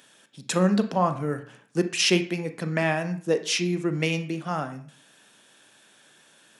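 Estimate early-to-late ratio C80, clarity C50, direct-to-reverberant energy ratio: 16.0 dB, 12.0 dB, 8.0 dB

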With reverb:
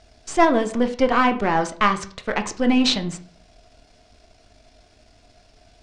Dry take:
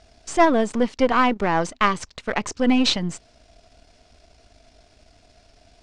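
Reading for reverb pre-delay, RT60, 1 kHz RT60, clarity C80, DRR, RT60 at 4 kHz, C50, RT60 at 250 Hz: 8 ms, 0.45 s, 0.45 s, 18.5 dB, 7.0 dB, 0.35 s, 14.0 dB, 0.45 s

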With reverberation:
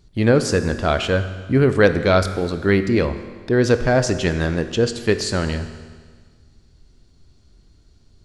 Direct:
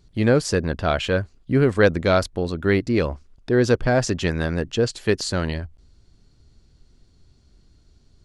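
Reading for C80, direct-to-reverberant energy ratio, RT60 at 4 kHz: 12.0 dB, 9.5 dB, 1.6 s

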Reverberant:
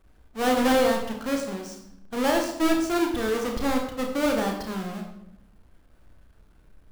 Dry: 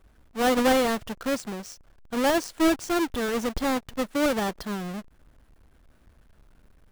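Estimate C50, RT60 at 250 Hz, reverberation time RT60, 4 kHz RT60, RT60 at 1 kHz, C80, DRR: 5.0 dB, 1.1 s, 0.80 s, 0.60 s, 0.75 s, 8.0 dB, 1.5 dB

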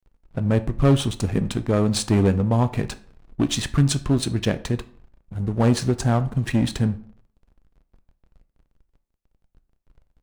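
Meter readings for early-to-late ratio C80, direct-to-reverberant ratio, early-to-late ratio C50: 20.5 dB, 11.5 dB, 17.0 dB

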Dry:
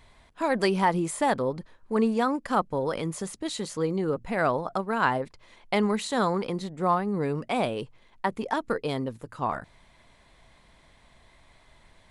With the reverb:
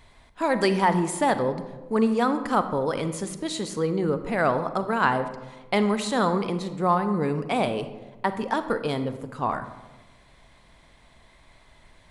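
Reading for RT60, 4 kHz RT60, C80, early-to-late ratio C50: 1.2 s, 0.65 s, 12.5 dB, 11.0 dB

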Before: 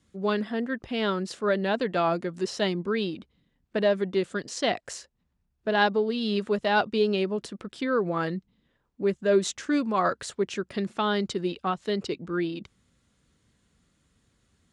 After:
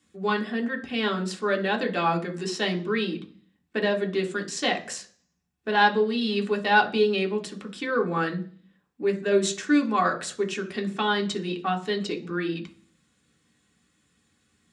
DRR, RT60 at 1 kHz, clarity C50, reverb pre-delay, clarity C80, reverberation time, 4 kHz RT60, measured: 2.0 dB, 0.40 s, 14.5 dB, 3 ms, 19.0 dB, 0.45 s, 0.50 s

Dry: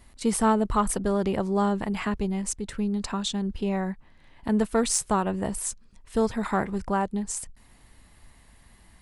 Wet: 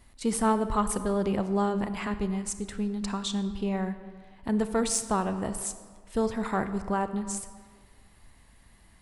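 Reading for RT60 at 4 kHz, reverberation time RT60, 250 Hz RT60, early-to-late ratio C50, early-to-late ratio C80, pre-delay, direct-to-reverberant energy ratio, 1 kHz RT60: 1.1 s, 1.7 s, 1.5 s, 11.5 dB, 12.5 dB, 29 ms, 10.5 dB, 1.7 s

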